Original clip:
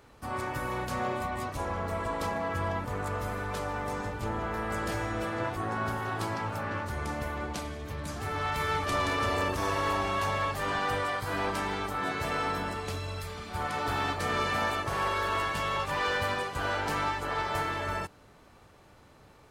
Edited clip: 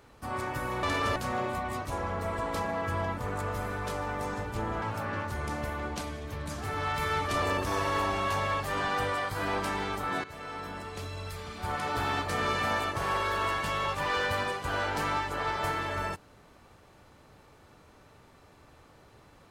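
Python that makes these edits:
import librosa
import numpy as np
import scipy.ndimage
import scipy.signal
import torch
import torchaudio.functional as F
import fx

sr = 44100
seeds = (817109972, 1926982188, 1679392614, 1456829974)

y = fx.edit(x, sr, fx.cut(start_s=4.49, length_s=1.91),
    fx.move(start_s=9.0, length_s=0.33, to_s=0.83),
    fx.fade_in_from(start_s=12.15, length_s=1.34, floor_db=-14.5), tone=tone)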